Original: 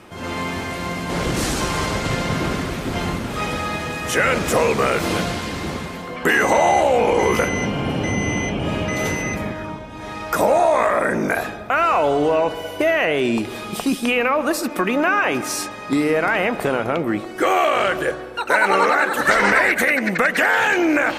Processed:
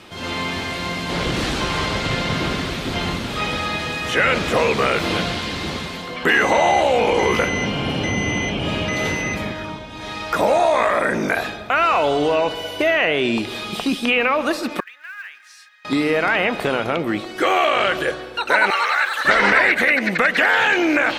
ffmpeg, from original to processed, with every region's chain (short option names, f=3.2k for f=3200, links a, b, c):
-filter_complex "[0:a]asettb=1/sr,asplit=3[a][b][c];[a]atrim=end=14.804[d];[b]atrim=start=14.8:end=15.85,asetpts=PTS-STARTPTS,afade=t=in:d=0.004:c=qsin,afade=t=out:st=1.046:d=0.004:c=qsin,bandpass=f=1.7k:t=q:w=4.4,aderivative,acrusher=bits=6:mode=log:mix=0:aa=0.000001[e];[c]atrim=start=15.846[f];[d][e]acrossfade=d=0.004:c1=hsin:c2=qsin[g];[g][f]acrossfade=d=0.004:c1=qsin:c2=hsin,asettb=1/sr,asplit=3[h][i][j];[h]atrim=end=18.704[k];[i]atrim=start=18.7:end=19.25,asetpts=PTS-STARTPTS,afade=t=in:d=0.004:c=qsin,afade=t=out:st=0.546:d=0.004:c=qsin,highpass=1.1k,acrusher=bits=8:dc=4:mix=0:aa=0.000001[l];[j]atrim=start=19.246[m];[k][l]acrossfade=d=0.004:c1=hsin:c2=qsin[n];[n][m]acrossfade=d=0.004:c1=qsin:c2=hsin,acrossover=split=3100[o][p];[p]acompressor=threshold=-38dB:ratio=4:attack=1:release=60[q];[o][q]amix=inputs=2:normalize=0,equalizer=f=3.8k:t=o:w=1.3:g=10.5,volume=-1dB"